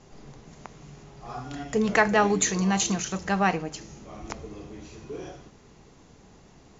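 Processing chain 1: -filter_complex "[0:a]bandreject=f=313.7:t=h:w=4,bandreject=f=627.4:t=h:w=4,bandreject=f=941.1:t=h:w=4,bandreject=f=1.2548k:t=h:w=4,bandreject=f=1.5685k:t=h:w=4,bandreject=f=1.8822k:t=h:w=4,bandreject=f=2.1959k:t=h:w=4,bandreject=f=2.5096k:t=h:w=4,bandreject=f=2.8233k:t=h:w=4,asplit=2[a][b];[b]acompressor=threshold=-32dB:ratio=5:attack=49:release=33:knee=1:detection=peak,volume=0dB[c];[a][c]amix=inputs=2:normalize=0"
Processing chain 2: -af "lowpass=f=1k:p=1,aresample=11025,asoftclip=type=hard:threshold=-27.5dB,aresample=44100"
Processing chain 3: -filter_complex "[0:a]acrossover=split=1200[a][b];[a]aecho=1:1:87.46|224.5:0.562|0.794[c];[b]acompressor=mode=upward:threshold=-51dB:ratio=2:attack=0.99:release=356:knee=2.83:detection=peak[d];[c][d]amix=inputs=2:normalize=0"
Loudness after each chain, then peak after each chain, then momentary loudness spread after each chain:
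-22.5, -34.0, -23.0 LUFS; -4.5, -25.0, -6.5 dBFS; 22, 19, 19 LU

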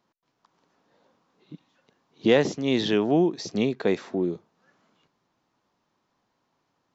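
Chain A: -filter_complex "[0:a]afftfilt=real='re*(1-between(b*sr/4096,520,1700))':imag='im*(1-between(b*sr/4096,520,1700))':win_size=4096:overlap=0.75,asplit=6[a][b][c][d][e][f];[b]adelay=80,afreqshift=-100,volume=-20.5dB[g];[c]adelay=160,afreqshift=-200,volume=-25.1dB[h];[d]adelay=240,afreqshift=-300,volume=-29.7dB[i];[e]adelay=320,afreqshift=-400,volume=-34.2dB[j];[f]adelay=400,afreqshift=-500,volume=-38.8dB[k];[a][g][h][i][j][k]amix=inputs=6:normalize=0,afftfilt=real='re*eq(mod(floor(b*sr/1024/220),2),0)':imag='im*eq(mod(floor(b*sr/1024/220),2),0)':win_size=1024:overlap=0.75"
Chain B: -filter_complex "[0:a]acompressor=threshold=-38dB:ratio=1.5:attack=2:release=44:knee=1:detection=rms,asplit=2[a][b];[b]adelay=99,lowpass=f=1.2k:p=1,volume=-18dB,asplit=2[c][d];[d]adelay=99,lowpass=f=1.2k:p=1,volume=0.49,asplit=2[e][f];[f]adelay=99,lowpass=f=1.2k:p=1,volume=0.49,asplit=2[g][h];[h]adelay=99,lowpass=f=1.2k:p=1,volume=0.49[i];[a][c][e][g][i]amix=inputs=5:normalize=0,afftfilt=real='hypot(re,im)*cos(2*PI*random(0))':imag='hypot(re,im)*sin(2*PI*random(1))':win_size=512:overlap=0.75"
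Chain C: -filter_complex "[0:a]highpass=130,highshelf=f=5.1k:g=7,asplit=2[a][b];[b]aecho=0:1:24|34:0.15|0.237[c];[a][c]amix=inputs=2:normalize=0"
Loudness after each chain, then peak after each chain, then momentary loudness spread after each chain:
-30.0, -38.0, -24.0 LUFS; -10.5, -21.5, -6.5 dBFS; 11, 20, 8 LU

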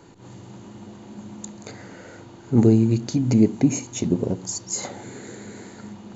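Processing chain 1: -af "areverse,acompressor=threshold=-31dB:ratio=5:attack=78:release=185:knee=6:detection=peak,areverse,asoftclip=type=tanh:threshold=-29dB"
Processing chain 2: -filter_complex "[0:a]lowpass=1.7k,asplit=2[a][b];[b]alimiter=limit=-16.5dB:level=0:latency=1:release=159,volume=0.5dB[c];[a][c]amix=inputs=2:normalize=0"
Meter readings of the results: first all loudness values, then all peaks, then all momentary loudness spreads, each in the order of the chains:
-37.0, -18.0 LUFS; -29.0, -2.5 dBFS; 9, 21 LU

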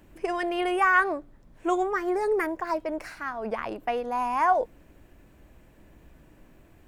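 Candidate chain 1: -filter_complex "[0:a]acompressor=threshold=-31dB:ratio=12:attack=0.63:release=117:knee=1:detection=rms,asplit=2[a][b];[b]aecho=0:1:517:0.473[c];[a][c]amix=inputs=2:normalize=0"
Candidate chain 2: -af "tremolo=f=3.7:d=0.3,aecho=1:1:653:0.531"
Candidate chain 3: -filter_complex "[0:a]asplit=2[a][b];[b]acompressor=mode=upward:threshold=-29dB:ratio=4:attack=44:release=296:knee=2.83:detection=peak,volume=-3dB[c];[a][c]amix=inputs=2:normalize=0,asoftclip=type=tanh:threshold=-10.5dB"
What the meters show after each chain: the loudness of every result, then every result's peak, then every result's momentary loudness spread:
-37.5, -28.0, -23.5 LUFS; -26.0, -11.5, -10.5 dBFS; 20, 9, 22 LU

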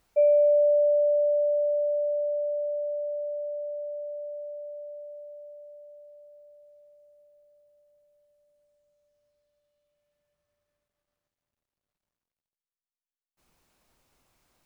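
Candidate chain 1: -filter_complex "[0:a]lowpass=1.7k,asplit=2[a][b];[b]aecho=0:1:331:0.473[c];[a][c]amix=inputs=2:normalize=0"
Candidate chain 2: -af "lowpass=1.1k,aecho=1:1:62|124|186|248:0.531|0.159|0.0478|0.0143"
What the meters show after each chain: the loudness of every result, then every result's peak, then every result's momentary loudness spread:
-28.0, -29.5 LUFS; -15.5, -15.5 dBFS; 22, 20 LU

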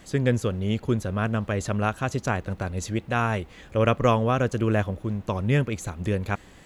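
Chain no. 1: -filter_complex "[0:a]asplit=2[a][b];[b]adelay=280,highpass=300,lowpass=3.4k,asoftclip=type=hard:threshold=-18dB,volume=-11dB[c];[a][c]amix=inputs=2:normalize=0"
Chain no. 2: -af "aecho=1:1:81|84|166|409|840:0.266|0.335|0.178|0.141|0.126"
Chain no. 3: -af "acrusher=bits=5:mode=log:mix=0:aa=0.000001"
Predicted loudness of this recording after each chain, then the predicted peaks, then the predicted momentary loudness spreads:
-26.0, -25.0, -26.0 LUFS; -7.5, -7.0, -7.5 dBFS; 8, 8, 8 LU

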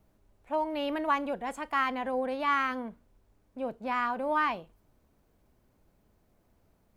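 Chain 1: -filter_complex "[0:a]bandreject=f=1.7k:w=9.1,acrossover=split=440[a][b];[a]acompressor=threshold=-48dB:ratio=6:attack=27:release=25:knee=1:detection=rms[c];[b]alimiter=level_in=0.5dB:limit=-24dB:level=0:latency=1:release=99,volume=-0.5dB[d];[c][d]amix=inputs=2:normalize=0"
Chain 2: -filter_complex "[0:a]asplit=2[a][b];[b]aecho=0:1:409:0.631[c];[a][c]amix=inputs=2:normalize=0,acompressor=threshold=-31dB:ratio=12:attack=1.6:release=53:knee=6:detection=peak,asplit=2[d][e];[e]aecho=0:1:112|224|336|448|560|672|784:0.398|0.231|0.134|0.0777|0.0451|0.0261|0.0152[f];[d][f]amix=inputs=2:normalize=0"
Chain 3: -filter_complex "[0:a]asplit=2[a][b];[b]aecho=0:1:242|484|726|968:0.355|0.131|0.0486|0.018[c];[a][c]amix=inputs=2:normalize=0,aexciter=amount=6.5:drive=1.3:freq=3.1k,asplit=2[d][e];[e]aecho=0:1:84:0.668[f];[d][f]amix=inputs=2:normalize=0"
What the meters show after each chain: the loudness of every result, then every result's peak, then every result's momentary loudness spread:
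-34.5, -36.0, -28.5 LUFS; -23.0, -23.0, -12.5 dBFS; 9, 7, 14 LU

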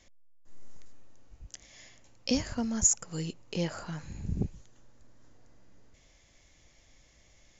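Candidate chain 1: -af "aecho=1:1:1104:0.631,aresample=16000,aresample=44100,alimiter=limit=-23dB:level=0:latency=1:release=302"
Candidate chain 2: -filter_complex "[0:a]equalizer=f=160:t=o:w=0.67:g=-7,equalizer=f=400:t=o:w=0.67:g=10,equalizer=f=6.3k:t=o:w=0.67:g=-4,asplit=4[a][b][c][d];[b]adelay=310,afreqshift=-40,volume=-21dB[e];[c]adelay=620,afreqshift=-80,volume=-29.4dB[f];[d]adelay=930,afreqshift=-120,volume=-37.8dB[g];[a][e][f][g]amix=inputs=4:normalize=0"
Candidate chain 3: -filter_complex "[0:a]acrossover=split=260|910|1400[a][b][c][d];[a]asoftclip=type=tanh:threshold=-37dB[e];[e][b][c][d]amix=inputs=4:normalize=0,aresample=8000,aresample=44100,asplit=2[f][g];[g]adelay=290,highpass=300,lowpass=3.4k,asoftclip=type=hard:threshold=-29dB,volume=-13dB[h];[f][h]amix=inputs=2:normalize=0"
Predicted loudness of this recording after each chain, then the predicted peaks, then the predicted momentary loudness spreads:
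-36.5, -32.5, -38.0 LUFS; -23.0, -14.0, -20.0 dBFS; 16, 22, 22 LU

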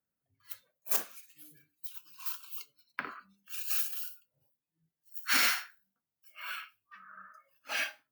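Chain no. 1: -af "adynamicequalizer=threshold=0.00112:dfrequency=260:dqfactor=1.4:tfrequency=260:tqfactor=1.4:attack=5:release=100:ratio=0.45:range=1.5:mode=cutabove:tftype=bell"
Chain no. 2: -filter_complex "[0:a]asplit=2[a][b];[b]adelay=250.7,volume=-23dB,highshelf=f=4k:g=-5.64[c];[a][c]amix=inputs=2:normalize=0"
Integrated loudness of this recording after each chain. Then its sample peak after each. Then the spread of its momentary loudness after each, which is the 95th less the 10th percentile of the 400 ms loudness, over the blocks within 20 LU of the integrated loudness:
-33.0, -33.0 LUFS; -14.5, -14.5 dBFS; 23, 23 LU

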